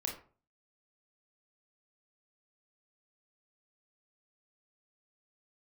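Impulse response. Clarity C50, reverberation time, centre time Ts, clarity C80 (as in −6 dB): 7.0 dB, 0.40 s, 24 ms, 12.5 dB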